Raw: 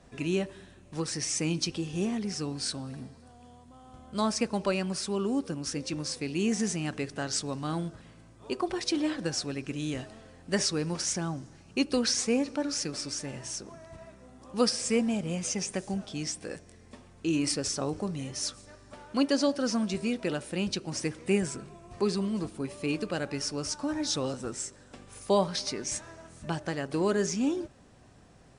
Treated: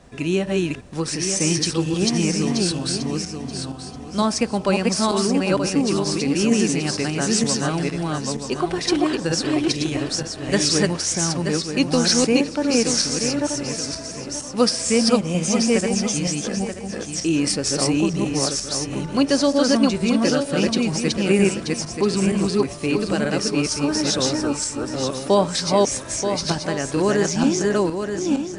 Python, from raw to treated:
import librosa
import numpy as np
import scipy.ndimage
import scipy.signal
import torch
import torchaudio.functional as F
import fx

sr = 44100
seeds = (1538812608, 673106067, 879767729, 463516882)

y = fx.reverse_delay_fb(x, sr, ms=465, feedback_pct=47, wet_db=-0.5)
y = y * librosa.db_to_amplitude(7.5)